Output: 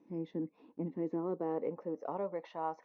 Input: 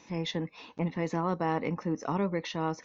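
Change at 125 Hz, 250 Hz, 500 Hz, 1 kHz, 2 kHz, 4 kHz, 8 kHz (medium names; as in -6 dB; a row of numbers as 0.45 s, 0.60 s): -12.5 dB, -6.5 dB, -3.5 dB, -7.5 dB, -17.5 dB, under -20 dB, no reading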